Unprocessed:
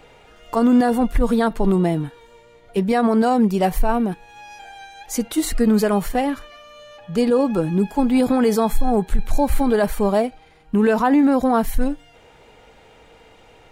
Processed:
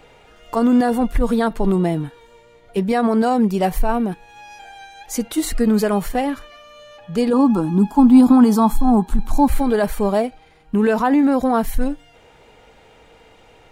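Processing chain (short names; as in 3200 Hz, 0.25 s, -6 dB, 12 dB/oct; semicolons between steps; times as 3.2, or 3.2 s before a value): 7.33–9.48 graphic EQ 125/250/500/1000/2000 Hz -6/+11/-10/+11/-10 dB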